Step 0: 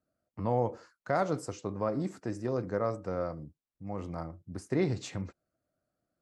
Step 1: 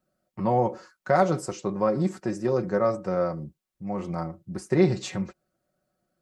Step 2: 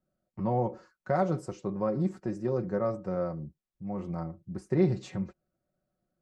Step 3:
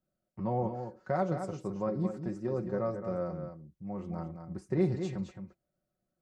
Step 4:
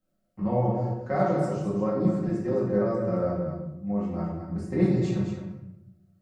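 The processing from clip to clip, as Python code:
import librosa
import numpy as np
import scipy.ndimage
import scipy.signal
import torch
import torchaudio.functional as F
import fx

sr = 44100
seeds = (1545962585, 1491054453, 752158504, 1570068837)

y1 = x + 0.65 * np.pad(x, (int(5.4 * sr / 1000.0), 0))[:len(x)]
y1 = y1 * 10.0 ** (5.5 / 20.0)
y2 = fx.tilt_eq(y1, sr, slope=-2.0)
y2 = y2 * 10.0 ** (-8.0 / 20.0)
y3 = y2 + 10.0 ** (-8.0 / 20.0) * np.pad(y2, (int(218 * sr / 1000.0), 0))[:len(y2)]
y3 = y3 * 10.0 ** (-3.5 / 20.0)
y4 = fx.room_shoebox(y3, sr, seeds[0], volume_m3=220.0, walls='mixed', distance_m=2.1)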